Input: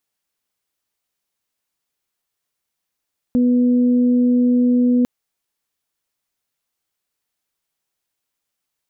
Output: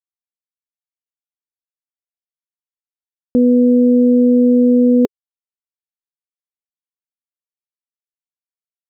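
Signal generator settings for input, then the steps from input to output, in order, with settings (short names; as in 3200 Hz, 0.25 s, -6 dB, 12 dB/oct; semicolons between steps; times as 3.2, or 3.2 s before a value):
steady additive tone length 1.70 s, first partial 246 Hz, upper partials -13.5 dB, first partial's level -12 dB
sample gate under -42.5 dBFS; bell 420 Hz +15 dB 0.77 oct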